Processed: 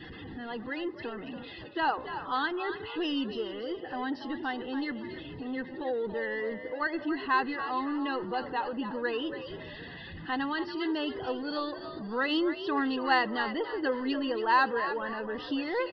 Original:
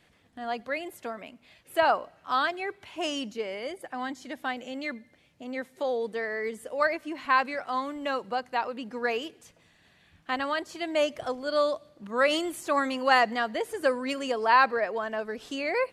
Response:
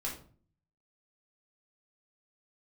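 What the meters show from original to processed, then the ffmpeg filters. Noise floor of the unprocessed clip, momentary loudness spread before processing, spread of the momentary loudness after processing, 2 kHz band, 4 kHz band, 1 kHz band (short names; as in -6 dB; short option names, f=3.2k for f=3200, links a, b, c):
-63 dBFS, 13 LU, 12 LU, -3.0 dB, -2.5 dB, -3.5 dB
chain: -filter_complex "[0:a]aeval=exprs='val(0)+0.5*0.0266*sgn(val(0))':c=same,afftdn=nr=26:nf=-39,superequalizer=6b=1.78:8b=0.282:10b=0.708,asplit=2[a][b];[b]asplit=4[c][d][e][f];[c]adelay=282,afreqshift=74,volume=-10dB[g];[d]adelay=564,afreqshift=148,volume=-18.4dB[h];[e]adelay=846,afreqshift=222,volume=-26.8dB[i];[f]adelay=1128,afreqshift=296,volume=-35.2dB[j];[g][h][i][j]amix=inputs=4:normalize=0[k];[a][k]amix=inputs=2:normalize=0,aresample=11025,aresample=44100,aeval=exprs='0.422*(cos(1*acos(clip(val(0)/0.422,-1,1)))-cos(1*PI/2))+0.00266*(cos(7*acos(clip(val(0)/0.422,-1,1)))-cos(7*PI/2))':c=same,asuperstop=centerf=2300:order=8:qfactor=4.8,volume=-4dB"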